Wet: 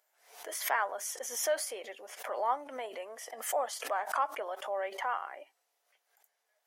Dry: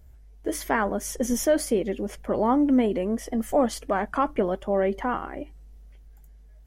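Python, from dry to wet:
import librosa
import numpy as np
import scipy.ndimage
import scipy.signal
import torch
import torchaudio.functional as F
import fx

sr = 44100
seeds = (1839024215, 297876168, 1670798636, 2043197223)

y = scipy.signal.sosfilt(scipy.signal.butter(4, 660.0, 'highpass', fs=sr, output='sos'), x)
y = fx.dynamic_eq(y, sr, hz=2400.0, q=0.95, threshold_db=-41.0, ratio=4.0, max_db=-4, at=(2.65, 4.83))
y = fx.pre_swell(y, sr, db_per_s=100.0)
y = F.gain(torch.from_numpy(y), -4.5).numpy()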